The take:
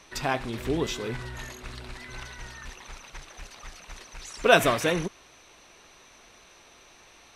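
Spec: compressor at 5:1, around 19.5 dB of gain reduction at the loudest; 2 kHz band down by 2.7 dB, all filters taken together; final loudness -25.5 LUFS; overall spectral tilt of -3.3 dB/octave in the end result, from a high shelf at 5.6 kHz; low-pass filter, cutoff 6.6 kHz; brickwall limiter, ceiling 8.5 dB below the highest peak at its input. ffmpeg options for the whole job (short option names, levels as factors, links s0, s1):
-af "lowpass=6600,equalizer=f=2000:t=o:g=-5,highshelf=f=5600:g=7.5,acompressor=threshold=0.0141:ratio=5,volume=9.44,alimiter=limit=0.211:level=0:latency=1"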